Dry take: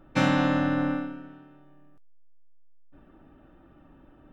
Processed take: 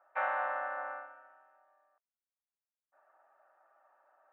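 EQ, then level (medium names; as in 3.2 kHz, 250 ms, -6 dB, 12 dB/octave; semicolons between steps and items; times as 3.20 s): elliptic high-pass 640 Hz, stop band 80 dB; low-pass 1.8 kHz 24 dB/octave; distance through air 160 m; -2.0 dB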